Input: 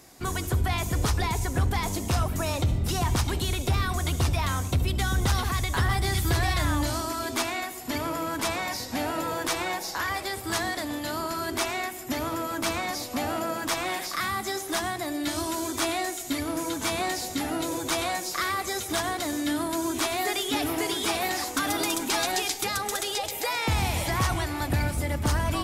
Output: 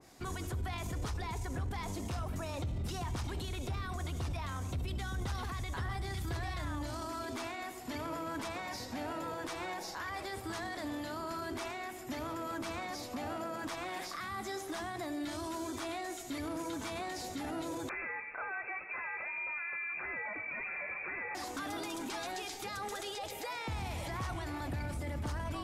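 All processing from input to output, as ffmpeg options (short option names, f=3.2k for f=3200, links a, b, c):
-filter_complex "[0:a]asettb=1/sr,asplit=3[a][b][c];[a]atrim=end=17.894[d];[b]atrim=start=17.89:end=21.35,asetpts=PTS-STARTPTS,afade=t=in:d=0.004:c=qsin,afade=t=out:st=3.456:d=0.004:c=qsin,aecho=1:1:137:0.0944,atrim=end_sample=152586,lowpass=f=2.3k:t=q:w=0.5098,lowpass=f=2.3k:t=q:w=0.6013,lowpass=f=2.3k:t=q:w=0.9,lowpass=f=2.3k:t=q:w=2.563,afreqshift=-2700[e];[c]atrim=start=21.346[f];[d][e]acrossfade=d=0.004:c1=hsin:c2=qsin[g];[g][f]acrossfade=d=0.004:c1=qsin:c2=hsin,highshelf=f=11k:g=-11.5,alimiter=level_in=2dB:limit=-24dB:level=0:latency=1:release=18,volume=-2dB,adynamicequalizer=threshold=0.00562:dfrequency=2000:dqfactor=0.7:tfrequency=2000:tqfactor=0.7:attack=5:release=100:ratio=0.375:range=1.5:mode=cutabove:tftype=highshelf,volume=-5dB"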